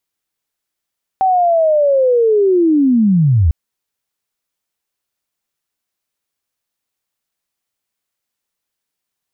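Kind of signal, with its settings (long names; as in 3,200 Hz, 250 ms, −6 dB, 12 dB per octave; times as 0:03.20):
glide linear 770 Hz → 70 Hz −9.5 dBFS → −8 dBFS 2.30 s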